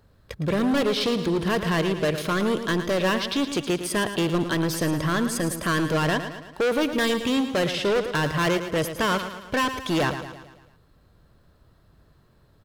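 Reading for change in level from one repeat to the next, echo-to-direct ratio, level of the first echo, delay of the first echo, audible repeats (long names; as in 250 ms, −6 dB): −5.5 dB, −8.5 dB, −10.0 dB, 111 ms, 5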